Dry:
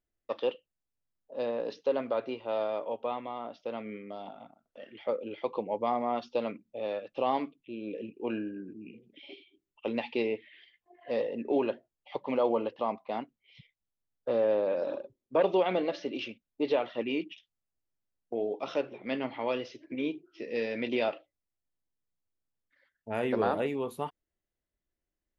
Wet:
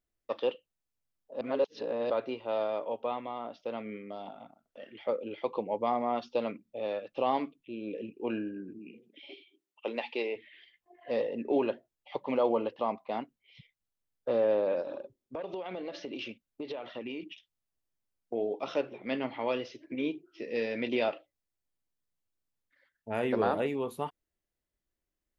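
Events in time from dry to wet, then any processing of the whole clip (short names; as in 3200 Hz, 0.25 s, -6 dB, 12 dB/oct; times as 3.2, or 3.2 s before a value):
1.41–2.1 reverse
8.78–10.35 HPF 190 Hz -> 460 Hz
14.81–17.23 compressor 12:1, threshold -34 dBFS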